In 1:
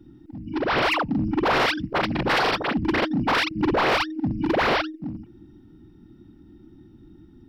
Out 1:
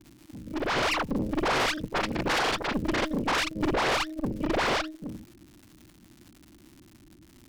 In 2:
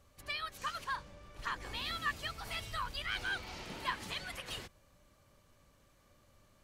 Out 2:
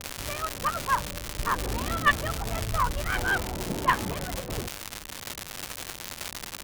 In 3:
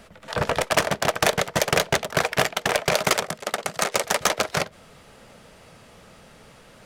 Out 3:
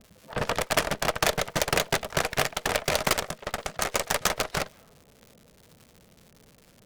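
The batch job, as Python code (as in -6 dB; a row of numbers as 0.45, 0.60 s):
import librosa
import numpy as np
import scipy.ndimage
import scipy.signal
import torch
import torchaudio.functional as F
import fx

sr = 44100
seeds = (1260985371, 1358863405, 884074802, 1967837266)

y = fx.env_lowpass(x, sr, base_hz=360.0, full_db=-23.0)
y = fx.dmg_crackle(y, sr, seeds[0], per_s=270.0, level_db=-36.0)
y = fx.cheby_harmonics(y, sr, harmonics=(4, 6), levels_db=(-7, -7), full_scale_db=-7.0)
y = y * 10.0 ** (-30 / 20.0) / np.sqrt(np.mean(np.square(y)))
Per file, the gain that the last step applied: -5.5, +16.5, -5.5 dB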